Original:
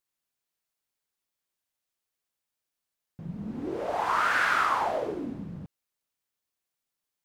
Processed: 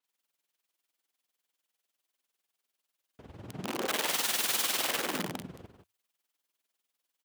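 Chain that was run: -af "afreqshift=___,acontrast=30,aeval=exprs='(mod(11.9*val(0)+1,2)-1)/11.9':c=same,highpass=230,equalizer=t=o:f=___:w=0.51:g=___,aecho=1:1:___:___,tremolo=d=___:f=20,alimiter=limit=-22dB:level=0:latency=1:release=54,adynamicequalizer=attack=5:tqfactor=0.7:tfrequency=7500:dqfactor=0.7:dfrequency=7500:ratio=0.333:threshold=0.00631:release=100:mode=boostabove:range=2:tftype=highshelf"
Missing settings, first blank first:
-100, 3100, 4, 176, 0.473, 0.73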